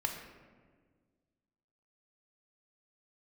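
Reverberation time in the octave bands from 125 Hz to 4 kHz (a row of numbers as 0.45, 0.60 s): 2.1, 2.1, 1.8, 1.4, 1.3, 0.85 s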